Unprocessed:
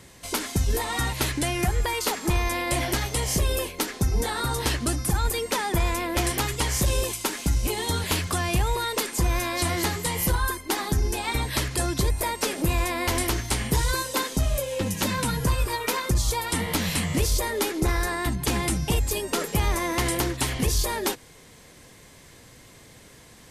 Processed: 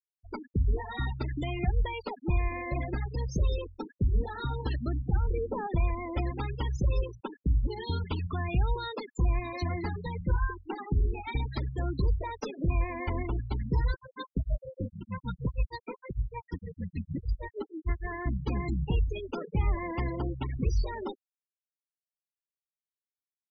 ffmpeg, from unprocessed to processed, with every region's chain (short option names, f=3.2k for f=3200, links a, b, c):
-filter_complex "[0:a]asettb=1/sr,asplit=3[a][b][c];[a]atrim=end=5.164[d];[b]atrim=start=5.16:end=5.67,asetpts=PTS-STARTPTS,afade=t=in:d=0.004:c=qsin,afade=t=out:st=0.506:d=0.004:c=qsin,tiltshelf=f=1.3k:g=9,acompressor=threshold=-22dB:ratio=2:attack=3.2:release=140:knee=1:detection=peak,bandreject=f=50:t=h:w=6,bandreject=f=100:t=h:w=6,bandreject=f=150:t=h:w=6,bandreject=f=200:t=h:w=6,bandreject=f=250:t=h:w=6,bandreject=f=300:t=h:w=6[e];[c]atrim=start=5.666[f];[d][e]acrossfade=d=0.004:c1=hsin:c2=qsin[g];[g][f]acrossfade=d=0.004:c1=qsin:c2=hsin,asettb=1/sr,asplit=3[h][i][j];[h]atrim=end=13.914[k];[i]atrim=start=13.91:end=18.07,asetpts=PTS-STARTPTS,afade=t=in:d=0.004:c=qsin,afade=t=out:st=4.156:d=0.004:c=qsin,tremolo=f=6.5:d=0.98,equalizer=f=890:w=6.4:g=-3[l];[j]atrim=start=18.066[m];[k][l]acrossfade=d=0.004:c1=hsin:c2=qsin[n];[n][m]acrossfade=d=0.004:c1=qsin:c2=hsin,lowpass=f=7.3k:w=0.5412,lowpass=f=7.3k:w=1.3066,lowshelf=f=170:g=7,afftfilt=real='re*gte(hypot(re,im),0.1)':imag='im*gte(hypot(re,im),0.1)':win_size=1024:overlap=0.75,volume=-8dB"